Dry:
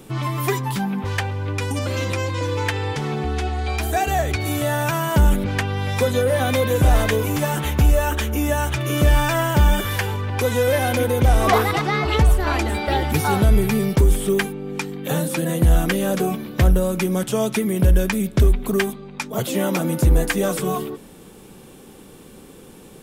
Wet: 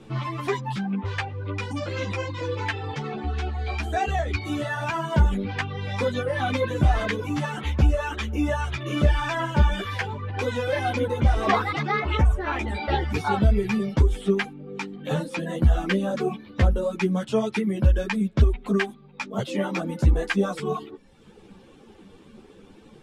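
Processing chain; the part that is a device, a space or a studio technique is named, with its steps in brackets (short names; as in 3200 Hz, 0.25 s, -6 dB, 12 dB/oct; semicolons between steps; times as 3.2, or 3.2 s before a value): reverb removal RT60 0.91 s; string-machine ensemble chorus (ensemble effect; LPF 4500 Hz 12 dB/oct); 11.99–12.68 bell 4600 Hz -14.5 dB 0.32 oct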